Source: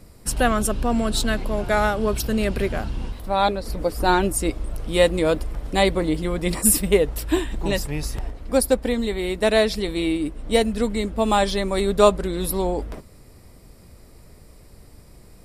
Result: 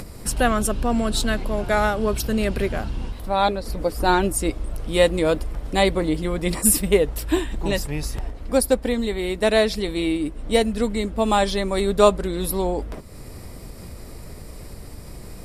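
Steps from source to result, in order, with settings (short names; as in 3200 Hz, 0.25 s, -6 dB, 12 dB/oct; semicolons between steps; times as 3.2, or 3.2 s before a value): upward compressor, threshold -26 dBFS; Vorbis 128 kbps 32000 Hz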